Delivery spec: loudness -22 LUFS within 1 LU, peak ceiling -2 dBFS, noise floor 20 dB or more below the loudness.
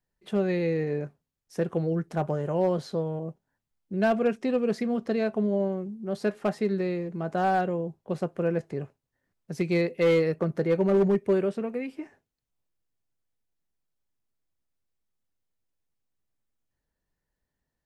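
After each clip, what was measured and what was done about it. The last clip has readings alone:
clipped samples 0.5%; clipping level -16.5 dBFS; loudness -27.5 LUFS; peak level -16.5 dBFS; loudness target -22.0 LUFS
-> clip repair -16.5 dBFS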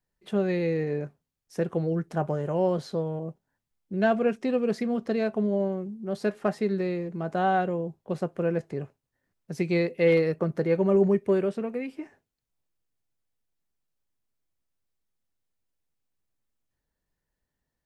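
clipped samples 0.0%; loudness -27.5 LUFS; peak level -11.0 dBFS; loudness target -22.0 LUFS
-> trim +5.5 dB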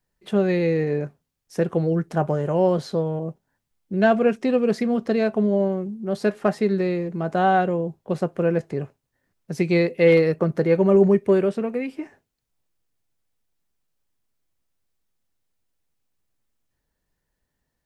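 loudness -22.0 LUFS; peak level -5.5 dBFS; noise floor -79 dBFS

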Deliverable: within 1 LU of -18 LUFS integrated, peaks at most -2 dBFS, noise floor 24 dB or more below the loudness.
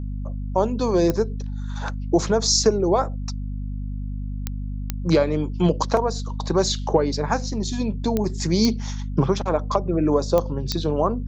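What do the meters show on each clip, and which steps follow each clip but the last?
clicks found 7; hum 50 Hz; highest harmonic 250 Hz; hum level -26 dBFS; loudness -23.0 LUFS; peak level -5.0 dBFS; loudness target -18.0 LUFS
-> de-click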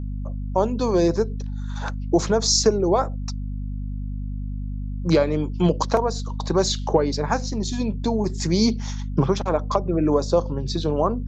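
clicks found 0; hum 50 Hz; highest harmonic 250 Hz; hum level -26 dBFS
-> de-hum 50 Hz, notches 5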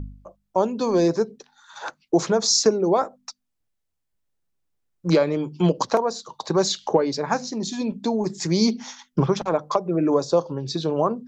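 hum not found; loudness -22.5 LUFS; peak level -5.5 dBFS; loudness target -18.0 LUFS
-> trim +4.5 dB; peak limiter -2 dBFS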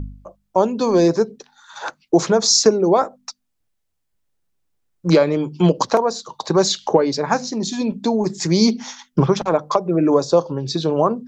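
loudness -18.0 LUFS; peak level -2.0 dBFS; noise floor -72 dBFS

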